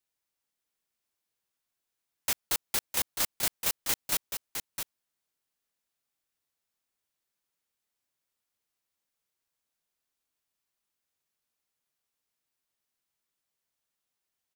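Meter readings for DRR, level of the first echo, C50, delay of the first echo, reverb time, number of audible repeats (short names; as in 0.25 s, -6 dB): none, -7.0 dB, none, 0.66 s, none, 1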